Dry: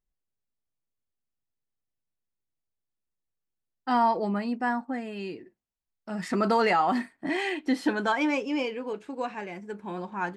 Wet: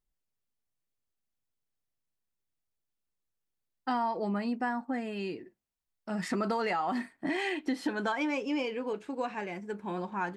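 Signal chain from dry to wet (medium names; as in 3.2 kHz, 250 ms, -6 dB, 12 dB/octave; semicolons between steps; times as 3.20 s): compression 5:1, threshold -28 dBFS, peak gain reduction 8.5 dB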